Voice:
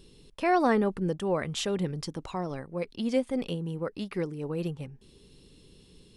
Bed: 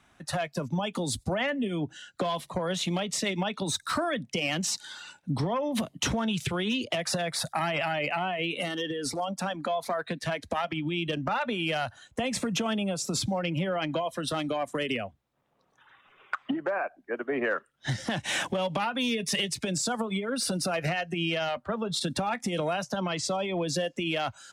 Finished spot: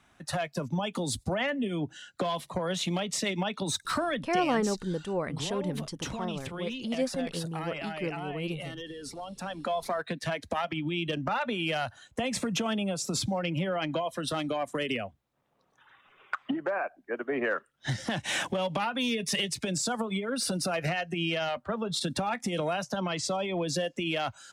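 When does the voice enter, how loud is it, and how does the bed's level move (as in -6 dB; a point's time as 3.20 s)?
3.85 s, -3.0 dB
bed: 4.15 s -1 dB
4.55 s -9 dB
9.29 s -9 dB
9.69 s -1 dB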